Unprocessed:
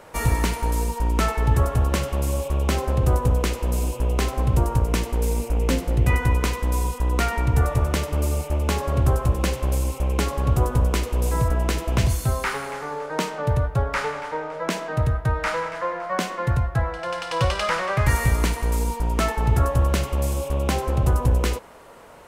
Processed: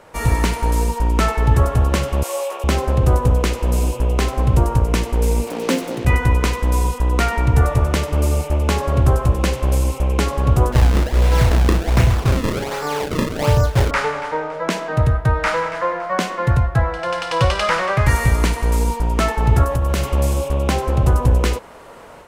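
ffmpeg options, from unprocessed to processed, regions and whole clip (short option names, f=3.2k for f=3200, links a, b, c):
-filter_complex "[0:a]asettb=1/sr,asplit=3[a][b][c];[a]atrim=end=2.234[d];[b]atrim=start=2.23:end=2.64,asetpts=PTS-STARTPTS,afade=t=in:d=0.004:c=qsin,afade=t=out:st=0.406:d=0.004:c=qsin,highpass=f=520:w=0.5412,highpass=f=520:w=1.3066,asplit=2[e][f];[f]adelay=20,volume=-3dB[g];[e][g]amix=inputs=2:normalize=0,atrim=end_sample=18081[h];[c]atrim=start=2.636[i];[d][h]acrossfade=d=0.004:c1=hsin:c2=qsin[j];[j][i]acrossfade=d=0.004:c1=qsin:c2=hsin,asettb=1/sr,asplit=3[k][l][m];[k]atrim=end=5.474[n];[l]atrim=start=5.47:end=6.05,asetpts=PTS-STARTPTS,afade=t=in:d=0.004:c=qsin,afade=t=out:st=0.576:d=0.004:c=qsin,highpass=f=190:w=0.5412,highpass=f=190:w=1.3066,acrusher=bits=5:mix=0:aa=0.5[o];[m]atrim=start=6.046[p];[n][o]acrossfade=d=0.004:c1=hsin:c2=qsin[q];[q][p]acrossfade=d=0.004:c1=qsin:c2=hsin,asettb=1/sr,asplit=3[r][s][t];[r]atrim=end=10.724[u];[s]atrim=start=10.72:end=13.91,asetpts=PTS-STARTPTS,afade=t=in:d=0.004:c=qsin,afade=t=out:st=3.186:d=0.004:c=qsin,acrusher=samples=33:mix=1:aa=0.000001:lfo=1:lforange=52.8:lforate=1.3,asplit=2[v][w];[w]adelay=34,volume=-7dB[x];[v][x]amix=inputs=2:normalize=0,atrim=end_sample=140679[y];[t]atrim=start=13.906[z];[u][y]acrossfade=d=0.004:c1=hsin:c2=qsin[aa];[aa][z]acrossfade=d=0.004:c1=qsin:c2=hsin,asettb=1/sr,asplit=3[ab][ac][ad];[ab]atrim=end=19.634[ae];[ac]atrim=start=19.63:end=20.09,asetpts=PTS-STARTPTS,afade=t=in:d=0.004:c=qsin,afade=t=out:st=0.456:d=0.004:c=qsin,highshelf=f=12k:g=9,acompressor=threshold=-20dB:ratio=4:attack=3.2:release=140:knee=1:detection=peak[af];[ad]atrim=start=20.086[ag];[ae][af]acrossfade=d=0.004:c1=hsin:c2=qsin[ah];[ah][ag]acrossfade=d=0.004:c1=qsin:c2=hsin,highshelf=f=9.9k:g=-6,dynaudnorm=f=150:g=3:m=6dB"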